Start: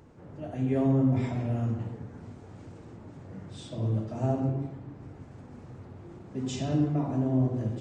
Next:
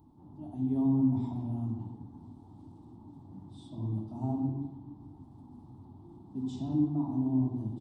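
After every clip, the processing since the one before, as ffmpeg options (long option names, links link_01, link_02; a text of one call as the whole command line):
ffmpeg -i in.wav -af "firequalizer=gain_entry='entry(180,0);entry(290,7);entry(490,-18);entry(870,6);entry(1500,-22);entry(2400,-22);entry(3500,-4);entry(6800,-14);entry(10000,3)':delay=0.05:min_phase=1,volume=-6dB" out.wav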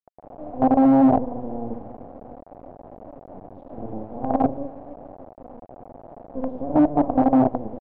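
ffmpeg -i in.wav -af "aecho=1:1:3.9:0.6,acrusher=bits=5:dc=4:mix=0:aa=0.000001,lowpass=frequency=710:width_type=q:width=4.9,volume=5.5dB" out.wav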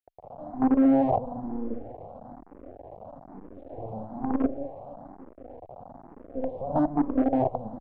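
ffmpeg -i in.wav -filter_complex "[0:a]alimiter=limit=-10.5dB:level=0:latency=1:release=345,asplit=2[link_01][link_02];[link_02]afreqshift=1.1[link_03];[link_01][link_03]amix=inputs=2:normalize=1" out.wav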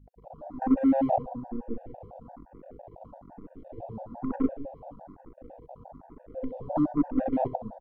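ffmpeg -i in.wav -af "aeval=exprs='val(0)+0.00224*(sin(2*PI*50*n/s)+sin(2*PI*2*50*n/s)/2+sin(2*PI*3*50*n/s)/3+sin(2*PI*4*50*n/s)/4+sin(2*PI*5*50*n/s)/5)':channel_layout=same,aecho=1:1:66|132|198:0.224|0.0694|0.0215,afftfilt=real='re*gt(sin(2*PI*5.9*pts/sr)*(1-2*mod(floor(b*sr/1024/480),2)),0)':imag='im*gt(sin(2*PI*5.9*pts/sr)*(1-2*mod(floor(b*sr/1024/480),2)),0)':win_size=1024:overlap=0.75" out.wav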